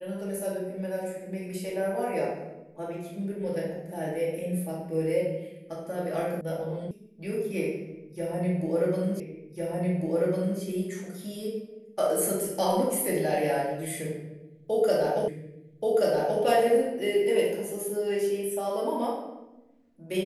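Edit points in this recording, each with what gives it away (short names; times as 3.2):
6.41 sound cut off
6.91 sound cut off
9.2 repeat of the last 1.4 s
15.28 repeat of the last 1.13 s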